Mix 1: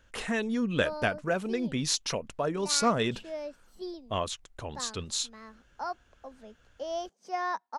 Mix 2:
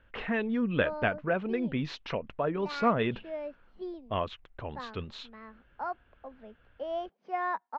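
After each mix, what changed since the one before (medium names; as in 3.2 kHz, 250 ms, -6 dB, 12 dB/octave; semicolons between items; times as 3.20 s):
master: add low-pass 2.9 kHz 24 dB/octave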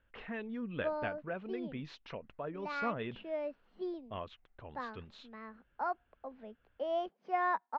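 speech -11.0 dB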